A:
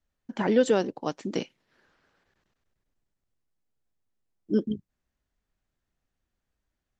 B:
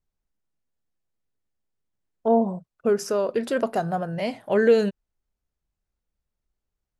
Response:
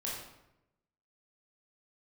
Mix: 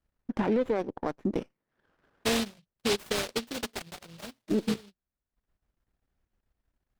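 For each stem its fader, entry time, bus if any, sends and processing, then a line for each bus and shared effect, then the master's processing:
+3.0 dB, 0.00 s, no send, running maximum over 9 samples
-1.0 dB, 0.00 s, no send, high shelf 3800 Hz +12 dB; notch comb 180 Hz; noise-modulated delay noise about 3700 Hz, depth 0.38 ms; auto duck -15 dB, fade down 1.60 s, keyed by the first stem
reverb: off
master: high shelf 4000 Hz -10.5 dB; transient shaper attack +2 dB, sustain -12 dB; limiter -18 dBFS, peak gain reduction 11 dB

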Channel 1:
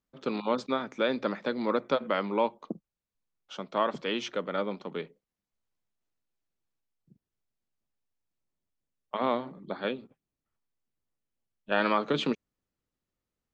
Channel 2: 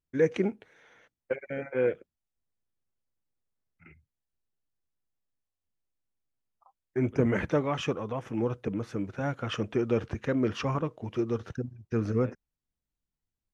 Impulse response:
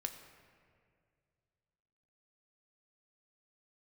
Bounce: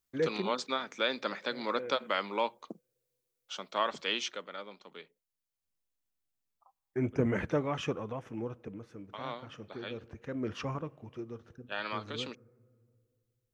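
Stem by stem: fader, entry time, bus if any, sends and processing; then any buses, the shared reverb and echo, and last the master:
4.14 s -2.5 dB -> 4.57 s -11 dB, 0.00 s, no send, tilt +3.5 dB/oct
-4.5 dB, 0.00 s, send -18.5 dB, auto duck -15 dB, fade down 1.10 s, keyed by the first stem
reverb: on, RT60 2.2 s, pre-delay 4 ms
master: dry

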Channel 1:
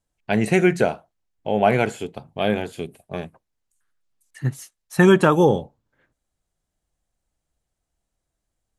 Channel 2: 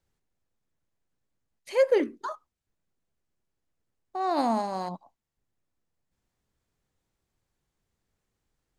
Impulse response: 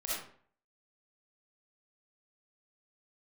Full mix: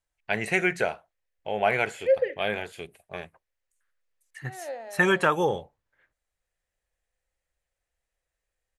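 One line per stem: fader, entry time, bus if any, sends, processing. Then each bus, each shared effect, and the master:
-5.5 dB, 0.00 s, no send, dry
+2.5 dB, 0.30 s, no send, vowel filter e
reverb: off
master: graphic EQ 125/250/2000 Hz -6/-10/+7 dB

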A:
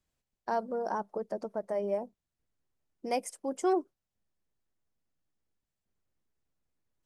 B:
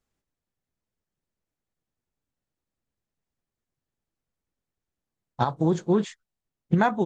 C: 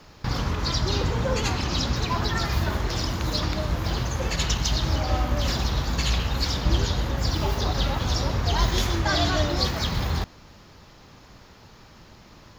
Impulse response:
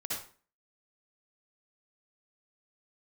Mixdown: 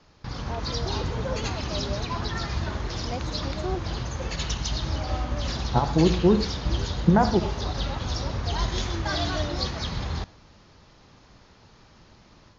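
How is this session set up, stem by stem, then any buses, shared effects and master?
-8.0 dB, 0.00 s, no send, dry
-2.0 dB, 0.35 s, send -11 dB, Bessel low-pass 1000 Hz
-8.5 dB, 0.00 s, send -23.5 dB, dry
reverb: on, RT60 0.40 s, pre-delay 52 ms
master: Chebyshev low-pass 6600 Hz, order 5; AGC gain up to 4 dB

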